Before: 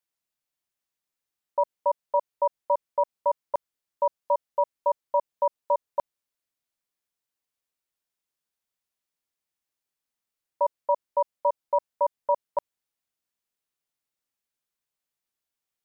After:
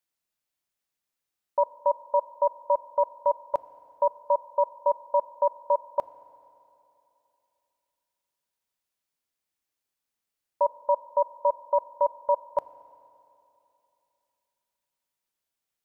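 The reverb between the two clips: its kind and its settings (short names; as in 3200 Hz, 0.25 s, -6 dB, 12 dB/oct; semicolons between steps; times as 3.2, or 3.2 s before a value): FDN reverb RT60 2.9 s, high-frequency decay 0.95×, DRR 16 dB; gain +1 dB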